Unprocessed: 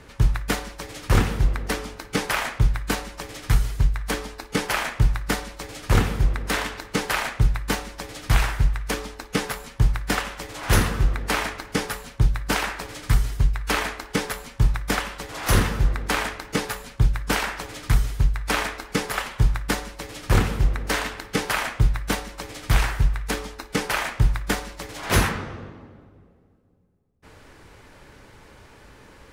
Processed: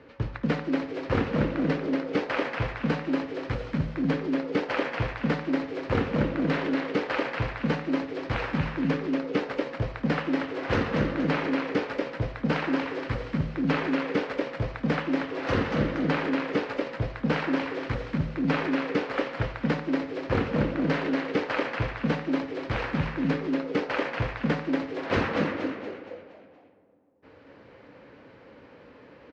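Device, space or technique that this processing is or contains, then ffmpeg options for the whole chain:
frequency-shifting delay pedal into a guitar cabinet: -filter_complex "[0:a]asplit=7[a][b][c][d][e][f][g];[b]adelay=235,afreqshift=110,volume=-4dB[h];[c]adelay=470,afreqshift=220,volume=-11.1dB[i];[d]adelay=705,afreqshift=330,volume=-18.3dB[j];[e]adelay=940,afreqshift=440,volume=-25.4dB[k];[f]adelay=1175,afreqshift=550,volume=-32.5dB[l];[g]adelay=1410,afreqshift=660,volume=-39.7dB[m];[a][h][i][j][k][l][m]amix=inputs=7:normalize=0,highpass=100,equalizer=f=160:t=q:w=4:g=-3,equalizer=f=280:t=q:w=4:g=8,equalizer=f=510:t=q:w=4:g=10,equalizer=f=3.5k:t=q:w=4:g=-5,lowpass=f=4k:w=0.5412,lowpass=f=4k:w=1.3066,volume=-6dB"

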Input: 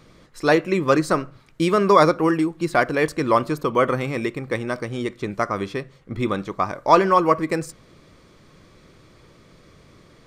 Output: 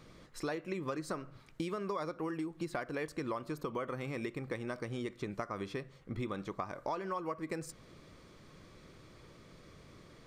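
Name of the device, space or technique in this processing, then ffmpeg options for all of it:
serial compression, peaks first: -af "acompressor=threshold=-24dB:ratio=6,acompressor=threshold=-37dB:ratio=1.5,volume=-5.5dB"

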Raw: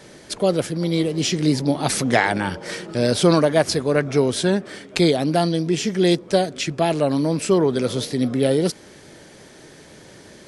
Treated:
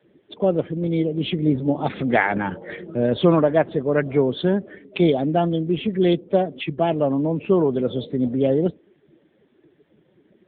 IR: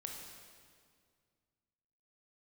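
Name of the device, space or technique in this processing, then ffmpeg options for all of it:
mobile call with aggressive noise cancelling: -filter_complex "[0:a]asettb=1/sr,asplit=3[a][b][c];[a]atrim=end=5.854[d];[b]atrim=start=5.85:end=7,asetpts=PTS-STARTPTS,afade=t=in:d=0.004:c=qsin,afade=t=out:st=1.146:d=0.004:c=qsin,highpass=f=43:w=0.5412,highpass=f=43:w=1.3066[e];[c]atrim=start=6.996[f];[d][e]acrossfade=d=0.004:c1=hsin:c2=qsin[g];[g][f]acrossfade=d=0.004:c1=qsin:c2=hsin,highpass=110,afftdn=nr=18:nf=-32" -ar 8000 -c:a libopencore_amrnb -b:a 7950

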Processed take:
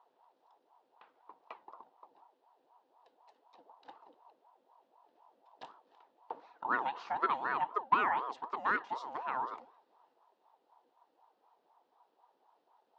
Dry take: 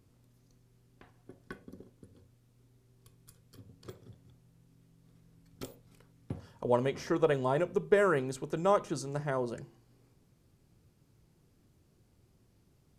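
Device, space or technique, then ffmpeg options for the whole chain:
voice changer toy: -af "aeval=exprs='val(0)*sin(2*PI*620*n/s+620*0.4/4*sin(2*PI*4*n/s))':c=same,highpass=520,equalizer=f=580:t=q:w=4:g=-8,equalizer=f=930:t=q:w=4:g=6,equalizer=f=2.2k:t=q:w=4:g=-6,lowpass=f=4k:w=0.5412,lowpass=f=4k:w=1.3066"

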